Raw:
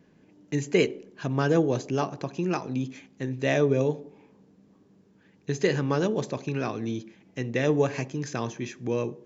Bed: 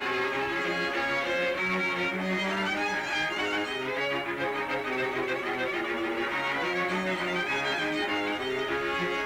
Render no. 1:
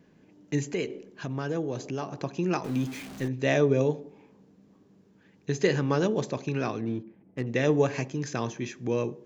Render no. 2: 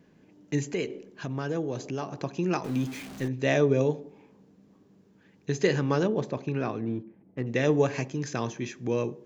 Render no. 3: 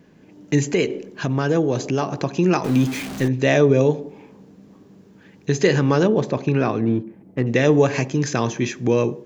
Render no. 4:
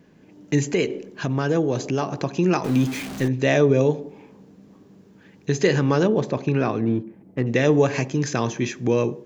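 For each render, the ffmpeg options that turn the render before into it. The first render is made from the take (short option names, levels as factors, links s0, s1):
-filter_complex "[0:a]asettb=1/sr,asplit=3[s0][s1][s2];[s0]atrim=end=0.734[s3];[s1]atrim=start=0.73:end=2.1,asetpts=PTS-STARTPTS,afade=t=in:d=0.004:c=qsin,afade=t=out:st=1.366:d=0.004:c=qsin,acompressor=threshold=0.0251:ratio=2:attack=3.2:release=140:knee=1:detection=peak[s4];[s2]atrim=start=2.096[s5];[s3][s4]acrossfade=d=0.004:c1=hsin:c2=qsin[s6];[s6][s5]acrossfade=d=0.004:c1=qsin:c2=hsin,asettb=1/sr,asplit=3[s7][s8][s9];[s7]atrim=end=2.644[s10];[s8]atrim=start=2.64:end=3.28,asetpts=PTS-STARTPTS,afade=t=in:d=0.004:c=qsin,afade=t=out:st=0.636:d=0.004:c=qsin,aeval=exprs='val(0)+0.5*0.0133*sgn(val(0))':c=same[s11];[s9]atrim=start=3.276[s12];[s10][s11]acrossfade=d=0.004:c1=hsin:c2=qsin[s13];[s13][s12]acrossfade=d=0.004:c1=qsin:c2=hsin,asettb=1/sr,asplit=3[s14][s15][s16];[s14]atrim=end=6.814[s17];[s15]atrim=start=6.81:end=7.47,asetpts=PTS-STARTPTS,afade=t=in:d=0.004:c=qsin,afade=t=out:st=0.656:d=0.004:c=qsin,adynamicsmooth=sensitivity=3.5:basefreq=970[s18];[s16]atrim=start=7.466[s19];[s17][s18]acrossfade=d=0.004:c1=hsin:c2=qsin[s20];[s20][s19]acrossfade=d=0.004:c1=qsin:c2=hsin"
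-filter_complex "[0:a]asettb=1/sr,asplit=3[s0][s1][s2];[s0]atrim=end=6.034[s3];[s1]atrim=start=6.03:end=7.46,asetpts=PTS-STARTPTS,afade=t=in:d=0.004:c=qsin,afade=t=out:st=1.426:d=0.004:c=qsin,aemphasis=mode=reproduction:type=75kf[s4];[s2]atrim=start=7.456[s5];[s3][s4]acrossfade=d=0.004:c1=hsin:c2=qsin[s6];[s6][s5]acrossfade=d=0.004:c1=qsin:c2=hsin"
-filter_complex "[0:a]asplit=2[s0][s1];[s1]alimiter=limit=0.0944:level=0:latency=1:release=116,volume=1.33[s2];[s0][s2]amix=inputs=2:normalize=0,dynaudnorm=f=200:g=3:m=1.58"
-af "volume=0.794"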